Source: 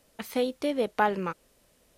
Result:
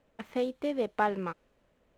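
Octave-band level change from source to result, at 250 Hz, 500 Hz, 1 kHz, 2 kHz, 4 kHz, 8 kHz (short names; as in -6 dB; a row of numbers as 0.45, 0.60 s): -3.0 dB, -3.0 dB, -3.5 dB, -4.0 dB, -7.5 dB, under -10 dB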